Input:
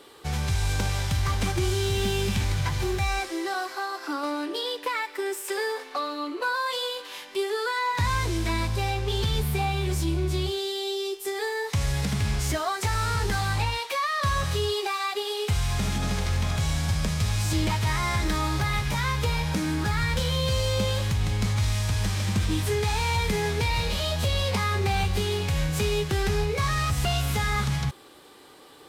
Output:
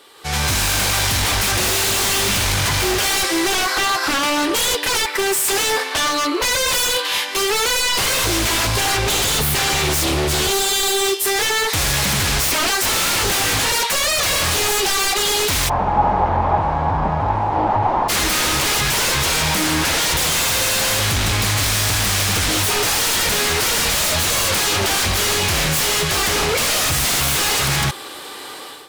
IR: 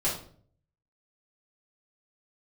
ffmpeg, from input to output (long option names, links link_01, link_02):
-filter_complex "[0:a]lowshelf=frequency=470:gain=-12,dynaudnorm=framelen=140:gausssize=5:maxgain=15dB,aeval=exprs='0.112*(abs(mod(val(0)/0.112+3,4)-2)-1)':channel_layout=same,asplit=3[link_01][link_02][link_03];[link_01]afade=type=out:start_time=15.68:duration=0.02[link_04];[link_02]lowpass=frequency=860:width_type=q:width=5.4,afade=type=in:start_time=15.68:duration=0.02,afade=type=out:start_time=18.08:duration=0.02[link_05];[link_03]afade=type=in:start_time=18.08:duration=0.02[link_06];[link_04][link_05][link_06]amix=inputs=3:normalize=0,volume=5.5dB"